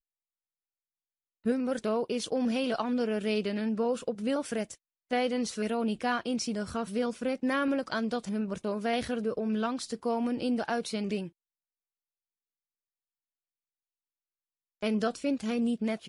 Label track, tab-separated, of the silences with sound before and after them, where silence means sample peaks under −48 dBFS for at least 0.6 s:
11.290000	14.820000	silence